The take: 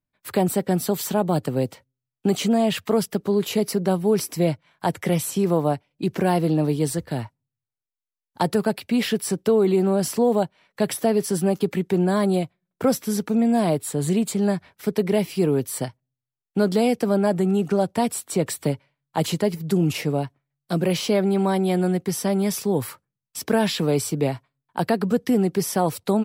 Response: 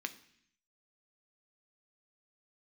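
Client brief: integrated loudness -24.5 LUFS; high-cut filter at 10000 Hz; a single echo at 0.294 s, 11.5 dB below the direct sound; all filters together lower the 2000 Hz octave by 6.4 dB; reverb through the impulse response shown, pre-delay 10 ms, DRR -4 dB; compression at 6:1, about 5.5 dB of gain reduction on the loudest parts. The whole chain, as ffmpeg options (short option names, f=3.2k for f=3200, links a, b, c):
-filter_complex "[0:a]lowpass=10k,equalizer=f=2k:t=o:g=-8.5,acompressor=threshold=-21dB:ratio=6,aecho=1:1:294:0.266,asplit=2[a][b];[1:a]atrim=start_sample=2205,adelay=10[c];[b][c]afir=irnorm=-1:irlink=0,volume=3.5dB[d];[a][d]amix=inputs=2:normalize=0,volume=-2dB"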